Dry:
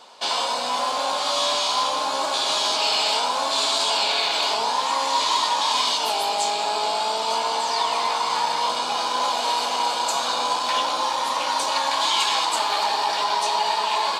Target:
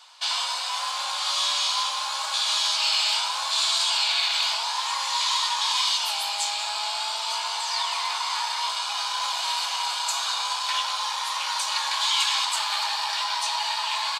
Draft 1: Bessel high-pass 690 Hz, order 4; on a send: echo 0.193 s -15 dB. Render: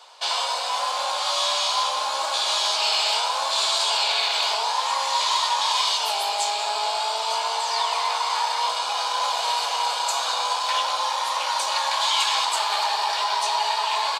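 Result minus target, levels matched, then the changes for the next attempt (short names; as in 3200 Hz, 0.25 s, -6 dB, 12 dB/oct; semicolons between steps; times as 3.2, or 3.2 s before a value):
500 Hz band +11.0 dB
change: Bessel high-pass 1400 Hz, order 4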